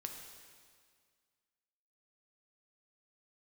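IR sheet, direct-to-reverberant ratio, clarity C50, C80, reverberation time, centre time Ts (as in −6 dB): 2.5 dB, 4.5 dB, 6.0 dB, 1.9 s, 50 ms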